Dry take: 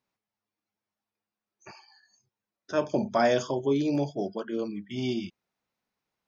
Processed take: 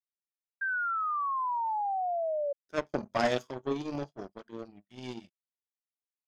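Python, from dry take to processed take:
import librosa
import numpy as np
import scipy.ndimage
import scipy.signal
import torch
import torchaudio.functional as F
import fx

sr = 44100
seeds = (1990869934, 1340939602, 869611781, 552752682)

y = fx.power_curve(x, sr, exponent=2.0)
y = fx.spec_paint(y, sr, seeds[0], shape='fall', start_s=0.61, length_s=1.92, low_hz=560.0, high_hz=1600.0, level_db=-31.0)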